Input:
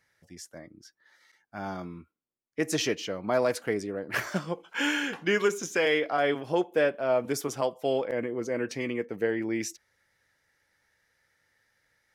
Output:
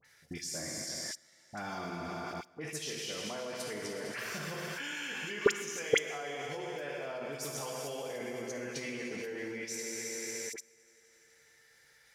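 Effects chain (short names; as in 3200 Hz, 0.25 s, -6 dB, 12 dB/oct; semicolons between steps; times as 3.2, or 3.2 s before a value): high shelf 11000 Hz -5 dB; compressor 2:1, threshold -34 dBFS, peak gain reduction 8 dB; high shelf 2100 Hz +11 dB; reverb RT60 3.2 s, pre-delay 3 ms, DRR -0.5 dB; level quantiser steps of 24 dB; dispersion highs, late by 49 ms, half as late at 1800 Hz; gain +8.5 dB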